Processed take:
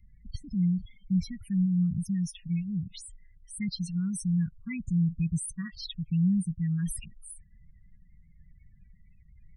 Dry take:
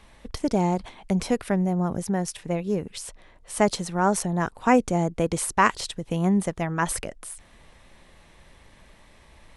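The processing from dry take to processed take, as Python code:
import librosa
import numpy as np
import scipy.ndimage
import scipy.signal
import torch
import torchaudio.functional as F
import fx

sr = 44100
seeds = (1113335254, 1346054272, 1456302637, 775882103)

y = fx.spec_topn(x, sr, count=16)
y = fx.dynamic_eq(y, sr, hz=110.0, q=1.1, threshold_db=-38.0, ratio=4.0, max_db=5)
y = scipy.signal.sosfilt(scipy.signal.ellip(3, 1.0, 70, [170.0, 2500.0], 'bandstop', fs=sr, output='sos'), y)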